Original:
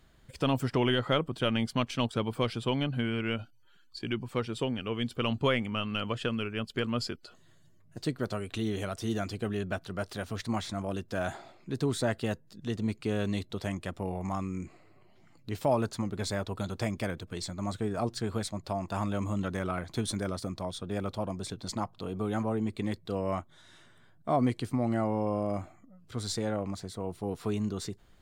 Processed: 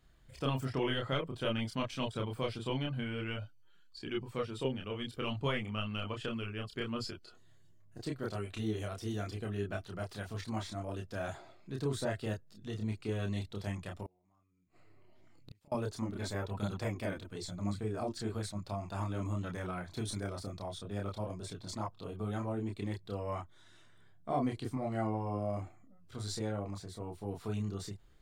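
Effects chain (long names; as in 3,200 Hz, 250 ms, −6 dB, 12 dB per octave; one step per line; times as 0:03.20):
0:14.02–0:15.72: gate with flip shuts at −28 dBFS, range −34 dB
multi-voice chorus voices 6, 0.5 Hz, delay 29 ms, depth 1.7 ms
level −3 dB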